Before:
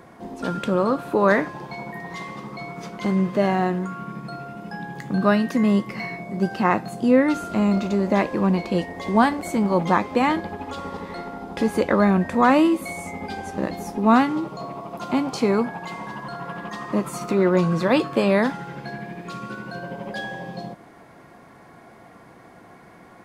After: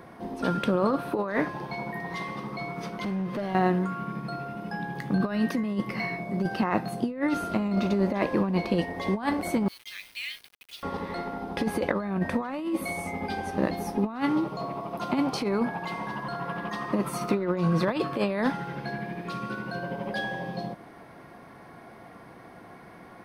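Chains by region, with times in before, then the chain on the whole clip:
2.92–3.55 s: compression 3:1, threshold -28 dBFS + hard clipper -26 dBFS
9.68–10.83 s: steep high-pass 2.4 kHz + word length cut 8-bit, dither none
whole clip: peaking EQ 7.2 kHz -14 dB 0.25 oct; compressor with a negative ratio -21 dBFS, ratio -0.5; trim -3 dB

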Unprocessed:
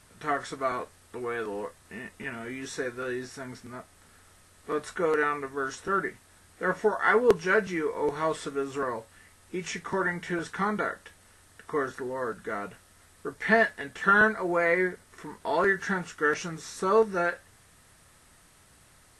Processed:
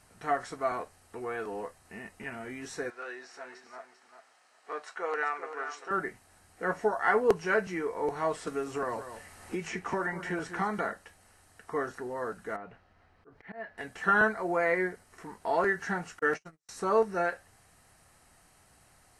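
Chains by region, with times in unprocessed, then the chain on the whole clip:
2.90–5.91 s: band-pass 620–5900 Hz + feedback delay 393 ms, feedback 17%, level -9.5 dB
8.47–10.93 s: delay 192 ms -14 dB + three bands compressed up and down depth 70%
12.56–13.78 s: distance through air 280 m + compression 2:1, threshold -42 dBFS + slow attack 116 ms
16.19–16.69 s: gate -33 dBFS, range -51 dB + doubling 13 ms -11 dB + tape noise reduction on one side only encoder only
whole clip: peaking EQ 750 Hz +8 dB 0.36 oct; band-stop 3.5 kHz, Q 8.1; trim -4 dB

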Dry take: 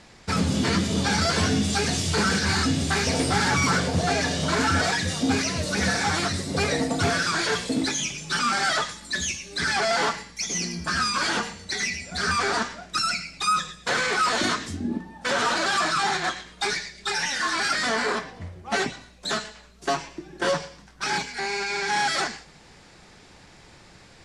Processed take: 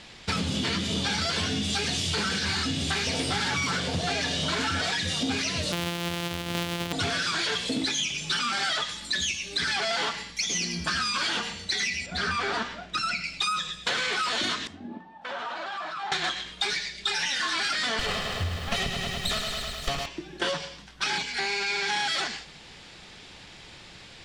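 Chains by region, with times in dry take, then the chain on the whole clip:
5.72–6.93 s: sorted samples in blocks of 256 samples + high-pass 67 Hz
12.06–13.24 s: treble shelf 3.6 kHz -11.5 dB + careless resampling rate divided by 2×, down none, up filtered
14.67–16.12 s: resonant low shelf 560 Hz -9 dB, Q 1.5 + compression 4:1, threshold -26 dBFS + band-pass filter 370 Hz, Q 0.65
17.99–20.06 s: comb filter that takes the minimum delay 1.6 ms + tone controls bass +11 dB, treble +1 dB + bit-crushed delay 104 ms, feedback 80%, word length 8-bit, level -7.5 dB
whole clip: peaking EQ 3.2 kHz +10.5 dB 1 oct; compression, threshold -25 dBFS

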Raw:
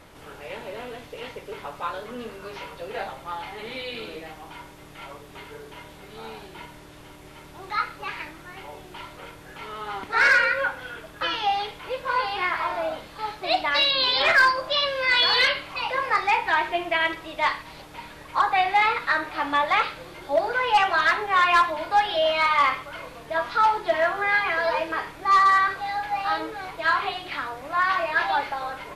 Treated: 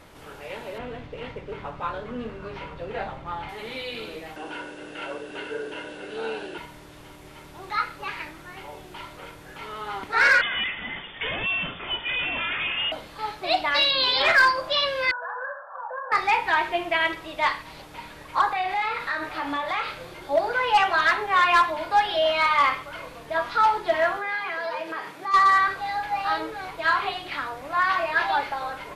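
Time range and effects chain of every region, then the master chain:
0.78–3.49 s: median filter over 5 samples + low-pass 9.3 kHz + tone controls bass +8 dB, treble -9 dB
4.36–6.58 s: brick-wall FIR low-pass 11 kHz + bass shelf 470 Hz -10 dB + small resonant body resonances 320/470/1500/2700 Hz, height 16 dB, ringing for 20 ms
10.41–12.92 s: one-bit delta coder 32 kbps, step -41.5 dBFS + treble shelf 2.3 kHz +11.5 dB + frequency inversion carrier 3.5 kHz
15.11–16.12 s: brick-wall FIR band-pass 480–1800 Hz + compression 2.5:1, threshold -32 dBFS
18.49–20.14 s: compression 3:1, threshold -26 dBFS + doubling 35 ms -7 dB
24.17–25.34 s: high-pass 150 Hz 24 dB/octave + compression 2:1, threshold -31 dBFS
whole clip: none

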